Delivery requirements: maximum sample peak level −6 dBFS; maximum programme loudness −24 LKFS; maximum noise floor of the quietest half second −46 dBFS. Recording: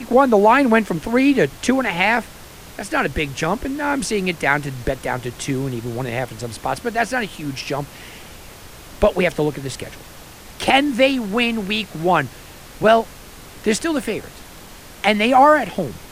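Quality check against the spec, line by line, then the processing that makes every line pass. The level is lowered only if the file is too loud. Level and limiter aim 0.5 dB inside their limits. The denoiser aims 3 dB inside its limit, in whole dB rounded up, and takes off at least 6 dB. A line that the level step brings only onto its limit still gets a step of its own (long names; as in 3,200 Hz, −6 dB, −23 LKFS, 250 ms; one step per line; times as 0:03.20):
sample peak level −2.0 dBFS: out of spec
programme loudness −19.0 LKFS: out of spec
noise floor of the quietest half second −40 dBFS: out of spec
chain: broadband denoise 6 dB, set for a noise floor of −40 dBFS
level −5.5 dB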